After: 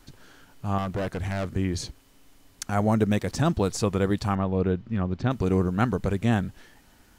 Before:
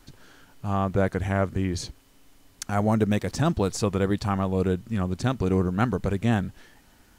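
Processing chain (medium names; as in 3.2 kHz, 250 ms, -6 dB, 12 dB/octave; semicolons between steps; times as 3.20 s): 0.78–1.53 s: overload inside the chain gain 25.5 dB; 4.35–5.31 s: distance through air 210 m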